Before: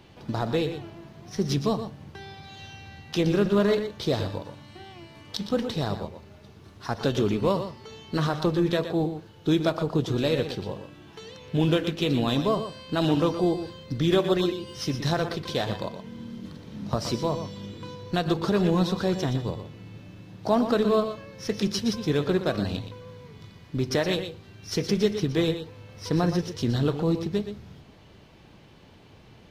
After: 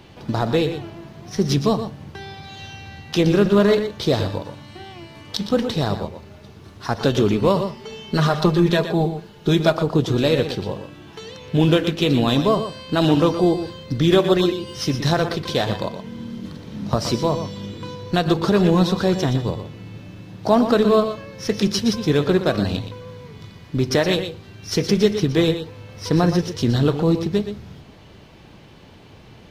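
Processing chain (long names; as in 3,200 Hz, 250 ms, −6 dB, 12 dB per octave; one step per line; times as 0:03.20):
0:07.56–0:09.75: comb filter 4.9 ms, depth 59%
level +6.5 dB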